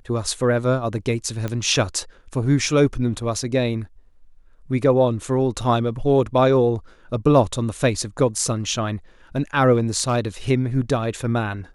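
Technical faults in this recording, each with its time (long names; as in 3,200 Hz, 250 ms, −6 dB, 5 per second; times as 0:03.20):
0:01.48: click −14 dBFS
0:09.73–0:10.19: clipping −13.5 dBFS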